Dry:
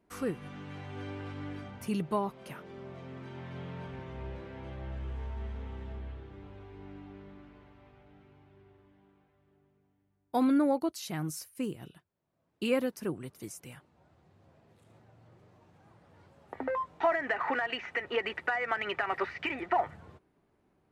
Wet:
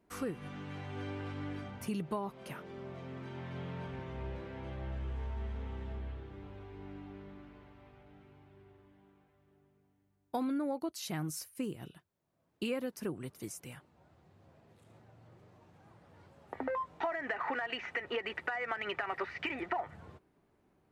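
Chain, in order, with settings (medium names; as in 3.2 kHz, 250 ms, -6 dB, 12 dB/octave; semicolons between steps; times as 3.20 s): compression 4:1, threshold -33 dBFS, peak gain reduction 9.5 dB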